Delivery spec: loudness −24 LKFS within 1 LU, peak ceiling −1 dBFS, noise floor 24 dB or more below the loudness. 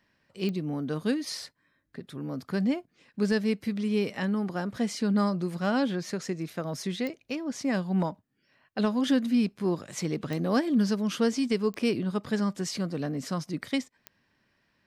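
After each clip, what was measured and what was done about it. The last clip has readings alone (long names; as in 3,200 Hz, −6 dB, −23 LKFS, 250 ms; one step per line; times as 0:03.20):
number of clicks 5; integrated loudness −29.5 LKFS; sample peak −16.0 dBFS; target loudness −24.0 LKFS
→ click removal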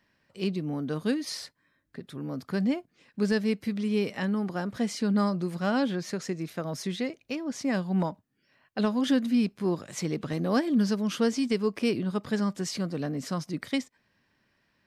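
number of clicks 0; integrated loudness −29.5 LKFS; sample peak −16.0 dBFS; target loudness −24.0 LKFS
→ level +5.5 dB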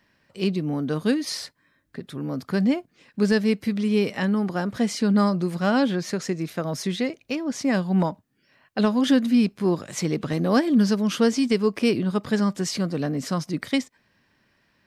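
integrated loudness −24.0 LKFS; sample peak −10.5 dBFS; background noise floor −67 dBFS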